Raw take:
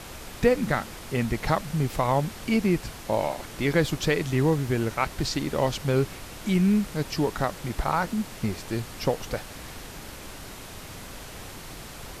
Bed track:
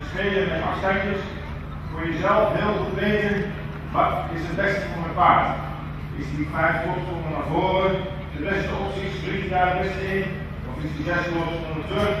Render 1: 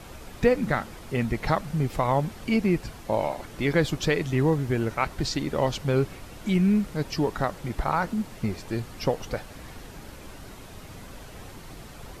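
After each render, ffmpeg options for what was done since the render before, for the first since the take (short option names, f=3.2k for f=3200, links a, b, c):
-af "afftdn=nr=7:nf=-42"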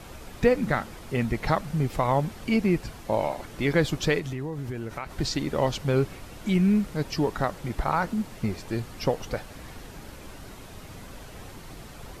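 -filter_complex "[0:a]asettb=1/sr,asplit=3[a][b][c];[a]atrim=end=4.194[d];[b]atrim=start=4.19:end=5.18,asetpts=PTS-STARTPTS,afade=t=in:d=0.004:c=qsin,afade=t=out:st=0.986:d=0.004:c=qsin,acompressor=threshold=-29dB:ratio=6:attack=3.2:release=140:knee=1:detection=peak[e];[c]atrim=start=5.176[f];[d][e]acrossfade=d=0.004:c1=hsin:c2=qsin[g];[g][f]acrossfade=d=0.004:c1=qsin:c2=hsin"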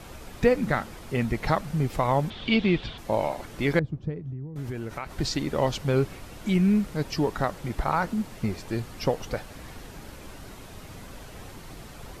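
-filter_complex "[0:a]asettb=1/sr,asplit=3[a][b][c];[a]atrim=end=2.304[d];[b]atrim=start=2.3:end=2.98,asetpts=PTS-STARTPTS,afade=t=in:d=0.004:c=qsin,afade=t=out:st=0.676:d=0.004:c=qsin,lowpass=f=3.5k:t=q:w=8.2[e];[c]atrim=start=2.976[f];[d][e]acrossfade=d=0.004:c1=hsin:c2=qsin[g];[g][f]acrossfade=d=0.004:c1=qsin:c2=hsin,asettb=1/sr,asplit=3[h][i][j];[h]atrim=end=3.794[k];[i]atrim=start=3.79:end=4.56,asetpts=PTS-STARTPTS,afade=t=in:d=0.004:c=qsin,afade=t=out:st=0.766:d=0.004:c=qsin,bandpass=f=110:t=q:w=1.1[l];[j]atrim=start=4.556[m];[k][l]acrossfade=d=0.004:c1=hsin:c2=qsin[n];[n][m]acrossfade=d=0.004:c1=qsin:c2=hsin"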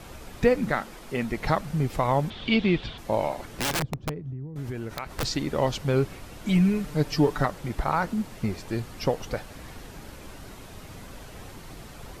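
-filter_complex "[0:a]asettb=1/sr,asplit=3[a][b][c];[a]atrim=end=0.694[d];[b]atrim=start=0.69:end=1.37,asetpts=PTS-STARTPTS,afade=t=in:d=0.004:c=qsin,afade=t=out:st=0.676:d=0.004:c=qsin,equalizer=f=85:w=1.3:g=-14.5[e];[c]atrim=start=1.366[f];[d][e]acrossfade=d=0.004:c1=hsin:c2=qsin[g];[g][f]acrossfade=d=0.004:c1=qsin:c2=hsin,asplit=3[h][i][j];[h]afade=t=out:st=3.45:d=0.02[k];[i]aeval=exprs='(mod(11.2*val(0)+1,2)-1)/11.2':c=same,afade=t=in:st=3.45:d=0.02,afade=t=out:st=5.23:d=0.02[l];[j]afade=t=in:st=5.23:d=0.02[m];[k][l][m]amix=inputs=3:normalize=0,asettb=1/sr,asplit=3[n][o][p];[n]atrim=end=6.484[q];[o]atrim=start=6.48:end=7.46,asetpts=PTS-STARTPTS,afade=t=in:d=0.004:c=qsin,afade=t=out:st=0.976:d=0.004:c=qsin,aecho=1:1:6.8:0.73,atrim=end_sample=43218[r];[p]atrim=start=7.456[s];[q][r]acrossfade=d=0.004:c1=hsin:c2=qsin[t];[t][s]acrossfade=d=0.004:c1=qsin:c2=hsin"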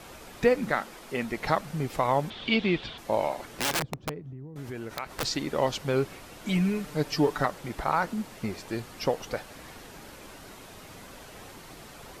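-af "lowshelf=f=160:g=-11.5"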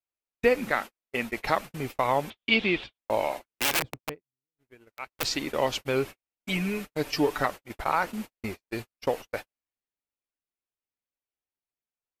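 -af "agate=range=-56dB:threshold=-33dB:ratio=16:detection=peak,equalizer=f=160:t=o:w=0.67:g=-7,equalizer=f=2.5k:t=o:w=0.67:g=6,equalizer=f=16k:t=o:w=0.67:g=8"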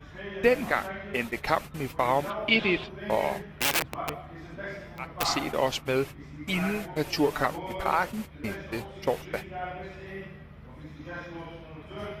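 -filter_complex "[1:a]volume=-15.5dB[a];[0:a][a]amix=inputs=2:normalize=0"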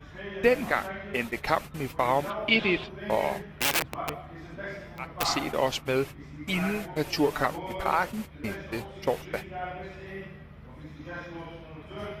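-af anull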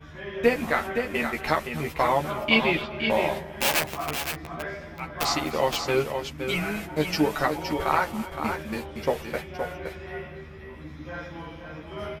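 -filter_complex "[0:a]asplit=2[a][b];[b]adelay=13,volume=-3dB[c];[a][c]amix=inputs=2:normalize=0,asplit=2[d][e];[e]aecho=0:1:256|517:0.126|0.447[f];[d][f]amix=inputs=2:normalize=0"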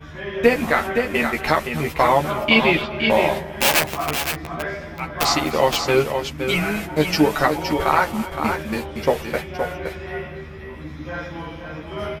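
-af "volume=6.5dB,alimiter=limit=-3dB:level=0:latency=1"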